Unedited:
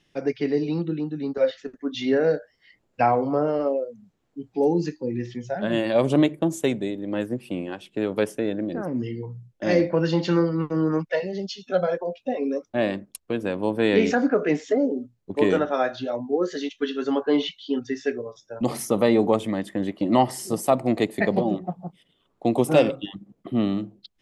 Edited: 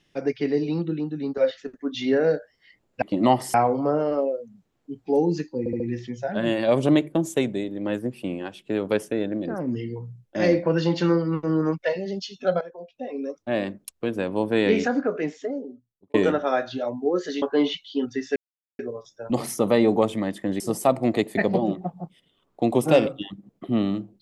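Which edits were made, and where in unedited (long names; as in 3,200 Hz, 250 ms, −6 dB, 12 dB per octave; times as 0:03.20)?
0:05.07: stutter 0.07 s, 4 plays
0:11.88–0:13.10: fade in linear, from −16 dB
0:13.80–0:15.41: fade out
0:16.69–0:17.16: remove
0:18.10: splice in silence 0.43 s
0:19.91–0:20.43: move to 0:03.02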